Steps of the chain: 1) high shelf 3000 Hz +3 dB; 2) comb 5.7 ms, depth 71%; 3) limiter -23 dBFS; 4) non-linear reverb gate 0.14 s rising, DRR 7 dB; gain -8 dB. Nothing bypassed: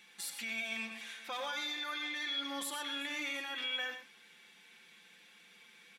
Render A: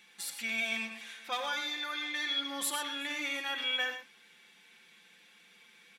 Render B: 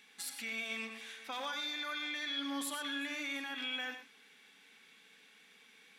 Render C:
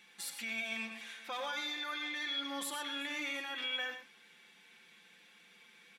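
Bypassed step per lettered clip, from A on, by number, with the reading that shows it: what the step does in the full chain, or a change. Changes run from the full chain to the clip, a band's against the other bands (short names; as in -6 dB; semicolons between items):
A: 3, mean gain reduction 1.5 dB; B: 2, 250 Hz band +4.5 dB; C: 1, momentary loudness spread change -2 LU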